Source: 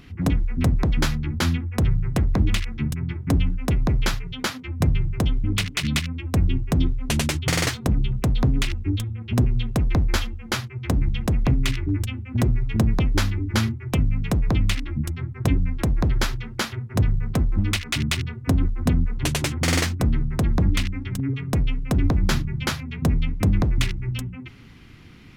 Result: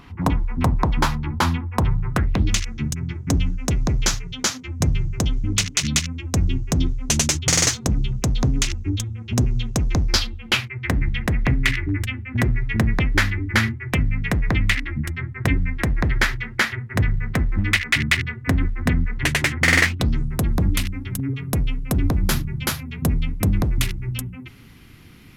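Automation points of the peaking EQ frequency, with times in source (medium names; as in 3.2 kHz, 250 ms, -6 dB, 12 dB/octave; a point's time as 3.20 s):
peaking EQ +14.5 dB
2.08 s 960 Hz
2.55 s 6.4 kHz
10.00 s 6.4 kHz
10.77 s 1.9 kHz
19.84 s 1.9 kHz
20.33 s 12 kHz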